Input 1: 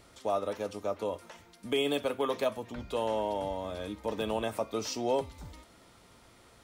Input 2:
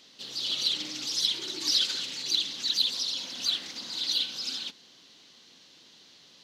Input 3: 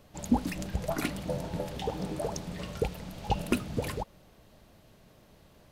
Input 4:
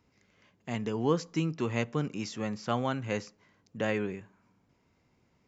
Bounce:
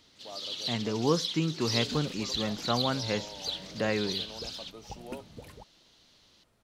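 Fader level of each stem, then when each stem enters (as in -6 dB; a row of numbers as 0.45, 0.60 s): -15.0, -7.0, -15.0, +1.0 dB; 0.00, 0.00, 1.60, 0.00 s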